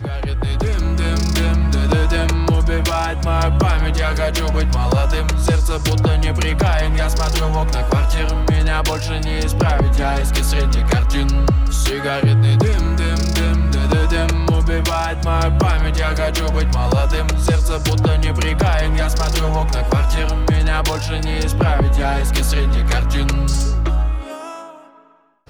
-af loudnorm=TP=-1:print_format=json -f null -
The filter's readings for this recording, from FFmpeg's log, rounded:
"input_i" : "-17.8",
"input_tp" : "-7.9",
"input_lra" : "3.0",
"input_thresh" : "-28.1",